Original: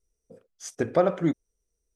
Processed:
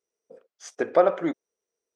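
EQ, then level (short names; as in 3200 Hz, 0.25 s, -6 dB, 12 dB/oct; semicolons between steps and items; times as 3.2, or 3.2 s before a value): HPF 470 Hz 12 dB/oct; tape spacing loss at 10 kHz 23 dB; high shelf 6800 Hz +8.5 dB; +6.5 dB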